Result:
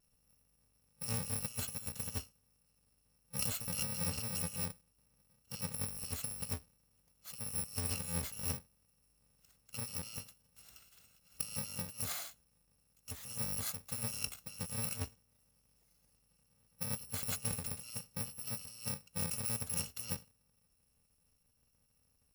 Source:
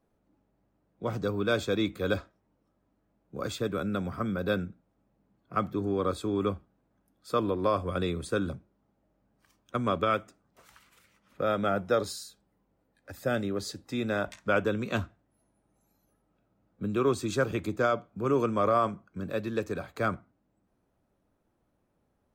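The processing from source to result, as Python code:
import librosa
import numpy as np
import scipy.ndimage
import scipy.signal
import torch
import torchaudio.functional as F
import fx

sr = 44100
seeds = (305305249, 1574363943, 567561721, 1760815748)

y = fx.bit_reversed(x, sr, seeds[0], block=128)
y = fx.over_compress(y, sr, threshold_db=-33.0, ratio=-0.5)
y = fx.vibrato(y, sr, rate_hz=0.61, depth_cents=12.0)
y = F.gain(torch.from_numpy(y), -5.0).numpy()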